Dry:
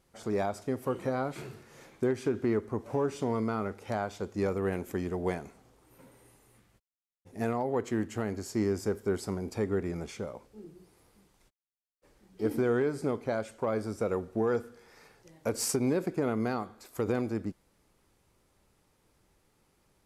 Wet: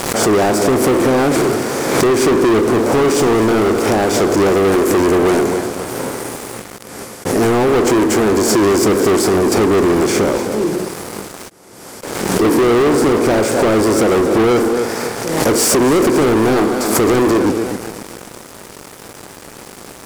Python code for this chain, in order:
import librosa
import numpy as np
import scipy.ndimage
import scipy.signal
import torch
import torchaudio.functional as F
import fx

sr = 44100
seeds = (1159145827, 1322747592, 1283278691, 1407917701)

p1 = fx.bin_compress(x, sr, power=0.6)
p2 = fx.low_shelf(p1, sr, hz=90.0, db=-11.0)
p3 = p2 + fx.echo_feedback(p2, sr, ms=261, feedback_pct=45, wet_db=-13.0, dry=0)
p4 = fx.dynamic_eq(p3, sr, hz=340.0, q=2.3, threshold_db=-43.0, ratio=4.0, max_db=8)
p5 = fx.leveller(p4, sr, passes=5)
p6 = fx.pre_swell(p5, sr, db_per_s=41.0)
y = p6 * librosa.db_to_amplitude(1.5)